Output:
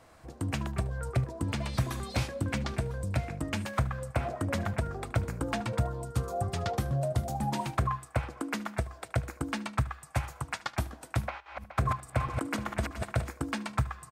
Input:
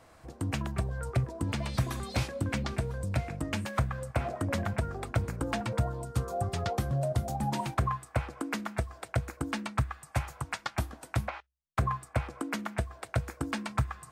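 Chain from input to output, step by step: 11.22–13.31 s: backward echo that repeats 211 ms, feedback 43%, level -4.5 dB; delay 75 ms -19.5 dB

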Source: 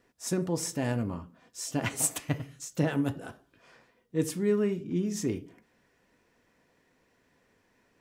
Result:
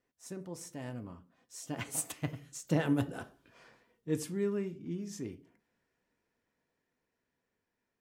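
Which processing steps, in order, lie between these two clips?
Doppler pass-by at 3.25 s, 10 m/s, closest 6.2 m

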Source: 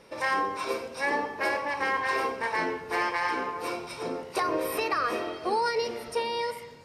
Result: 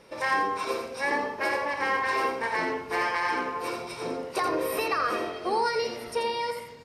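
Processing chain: delay 84 ms -6.5 dB

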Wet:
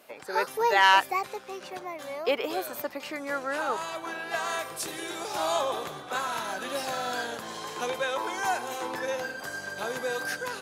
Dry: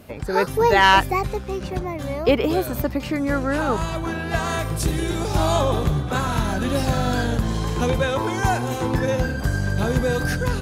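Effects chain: high-pass 560 Hz 12 dB/octave; trim -4.5 dB

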